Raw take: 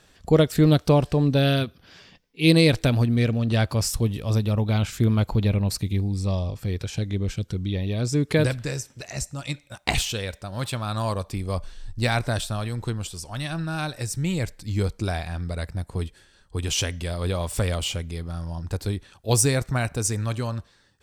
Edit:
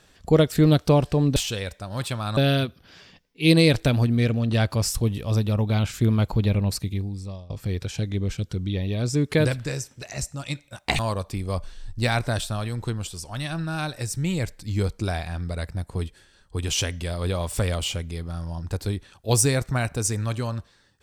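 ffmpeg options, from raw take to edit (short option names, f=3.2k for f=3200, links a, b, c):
-filter_complex "[0:a]asplit=5[a][b][c][d][e];[a]atrim=end=1.362[f];[b]atrim=start=9.978:end=10.992[g];[c]atrim=start=1.358:end=6.49,asetpts=PTS-STARTPTS,afade=t=out:st=4.322:d=0.81:silence=0.0841395[h];[d]atrim=start=6.49:end=9.982,asetpts=PTS-STARTPTS,afade=t=in:d=0.004:c=hsin:silence=0.0841395[i];[e]atrim=start=10.988[j];[f][g]acrossfade=d=0.004:c1=hsin:c2=hsin[k];[h][i]concat=n=2:v=0:a=1[l];[k][l]acrossfade=d=0.004:c1=hsin:c2=hsin[m];[m][j]acrossfade=d=0.004:c1=hsin:c2=hsin"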